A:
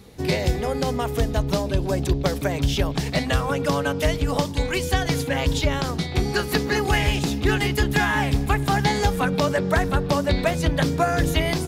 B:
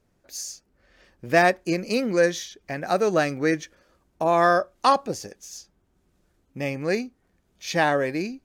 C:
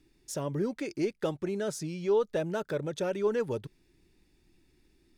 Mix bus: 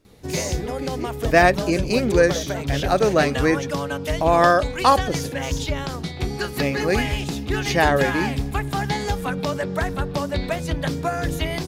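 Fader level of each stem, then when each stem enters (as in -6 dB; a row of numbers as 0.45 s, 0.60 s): -3.5 dB, +3.0 dB, -2.0 dB; 0.05 s, 0.00 s, 0.00 s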